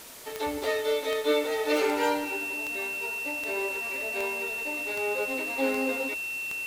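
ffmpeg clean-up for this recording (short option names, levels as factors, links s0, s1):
-af "adeclick=t=4,bandreject=f=2700:w=30,afwtdn=0.0056"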